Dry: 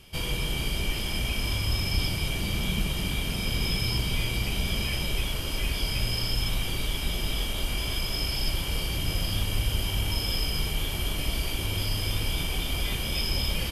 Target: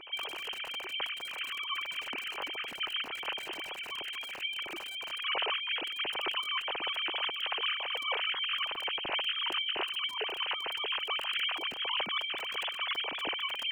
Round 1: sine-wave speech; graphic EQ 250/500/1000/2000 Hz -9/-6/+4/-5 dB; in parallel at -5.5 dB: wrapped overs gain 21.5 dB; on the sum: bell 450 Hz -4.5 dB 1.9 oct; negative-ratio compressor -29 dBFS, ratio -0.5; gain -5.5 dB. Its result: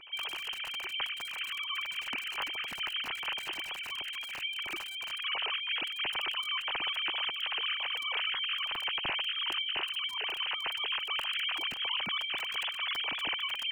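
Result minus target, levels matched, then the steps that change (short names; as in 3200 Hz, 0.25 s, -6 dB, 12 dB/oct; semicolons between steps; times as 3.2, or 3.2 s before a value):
500 Hz band -7.0 dB
change: bell 450 Hz +7.5 dB 1.9 oct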